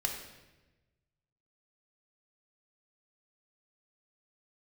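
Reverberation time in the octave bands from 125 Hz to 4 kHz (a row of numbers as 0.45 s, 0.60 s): 1.8 s, 1.3 s, 1.2 s, 1.0 s, 1.1 s, 0.90 s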